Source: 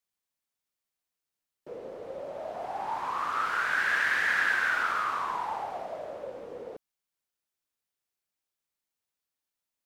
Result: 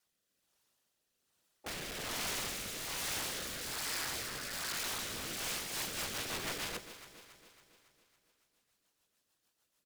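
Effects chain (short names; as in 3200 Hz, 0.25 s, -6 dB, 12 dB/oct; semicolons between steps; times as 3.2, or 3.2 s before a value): HPF 53 Hz 12 dB/oct; high shelf 9900 Hz -4 dB; notch 2200 Hz, Q 6.2; negative-ratio compressor -37 dBFS, ratio -1; harmoniser -7 st -12 dB, -4 st -11 dB, +5 st -18 dB; vibrato 1.4 Hz 25 cents; whisperiser; wrapped overs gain 40 dB; rotary speaker horn 1.2 Hz, later 6.7 Hz, at 5.27; echo with dull and thin repeats by turns 0.139 s, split 820 Hz, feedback 74%, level -10.5 dB; gain +8 dB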